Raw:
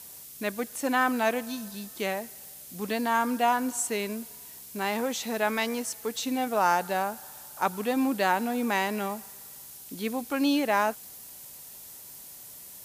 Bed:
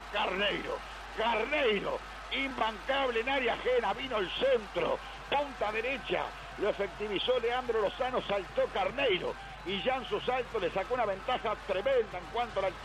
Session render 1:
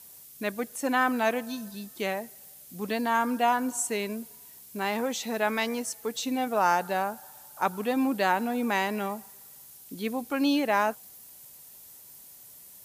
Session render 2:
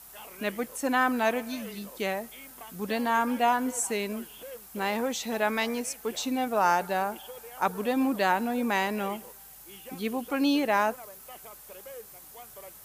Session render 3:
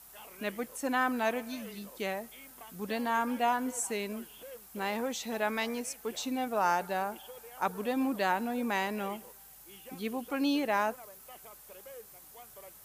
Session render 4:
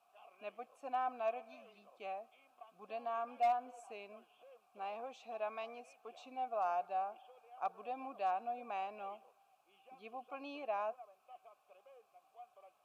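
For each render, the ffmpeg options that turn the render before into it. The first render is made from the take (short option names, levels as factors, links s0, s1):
-af "afftdn=nr=6:nf=-46"
-filter_complex "[1:a]volume=0.158[s0];[0:a][s0]amix=inputs=2:normalize=0"
-af "volume=0.596"
-filter_complex "[0:a]asplit=3[s0][s1][s2];[s0]bandpass=f=730:t=q:w=8,volume=1[s3];[s1]bandpass=f=1090:t=q:w=8,volume=0.501[s4];[s2]bandpass=f=2440:t=q:w=8,volume=0.355[s5];[s3][s4][s5]amix=inputs=3:normalize=0,asoftclip=type=hard:threshold=0.0447"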